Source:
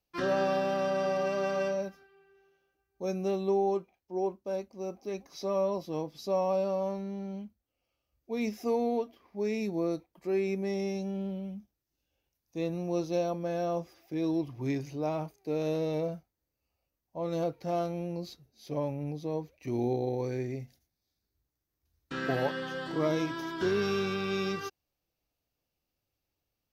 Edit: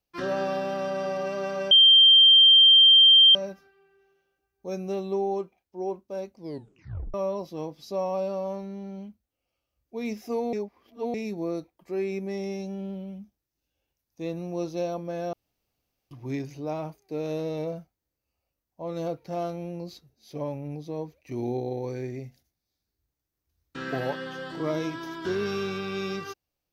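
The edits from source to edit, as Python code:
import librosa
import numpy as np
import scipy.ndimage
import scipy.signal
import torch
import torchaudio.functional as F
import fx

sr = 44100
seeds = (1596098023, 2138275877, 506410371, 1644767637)

y = fx.edit(x, sr, fx.insert_tone(at_s=1.71, length_s=1.64, hz=3160.0, db=-11.5),
    fx.tape_stop(start_s=4.71, length_s=0.79),
    fx.reverse_span(start_s=8.89, length_s=0.61),
    fx.room_tone_fill(start_s=13.69, length_s=0.78), tone=tone)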